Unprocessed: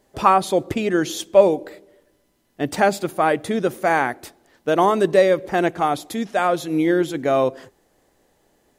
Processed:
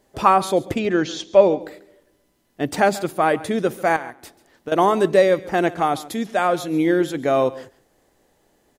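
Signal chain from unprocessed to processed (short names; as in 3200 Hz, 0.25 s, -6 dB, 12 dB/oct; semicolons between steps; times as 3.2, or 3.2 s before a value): 0.79–1.61 LPF 5900 Hz 24 dB/oct; 3.96–4.72 compressor 12:1, threshold -29 dBFS, peak gain reduction 14.5 dB; echo 0.139 s -18.5 dB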